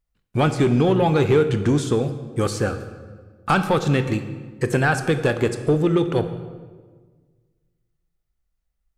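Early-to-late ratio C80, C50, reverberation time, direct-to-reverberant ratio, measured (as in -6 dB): 12.0 dB, 10.5 dB, 1.5 s, 8.5 dB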